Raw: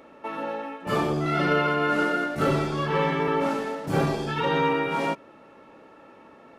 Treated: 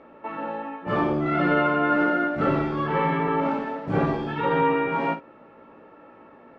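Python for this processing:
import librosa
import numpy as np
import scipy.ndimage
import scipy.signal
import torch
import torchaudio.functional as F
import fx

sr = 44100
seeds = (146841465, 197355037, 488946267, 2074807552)

p1 = scipy.signal.sosfilt(scipy.signal.butter(2, 2200.0, 'lowpass', fs=sr, output='sos'), x)
y = p1 + fx.room_early_taps(p1, sr, ms=(17, 54), db=(-6.5, -10.5), dry=0)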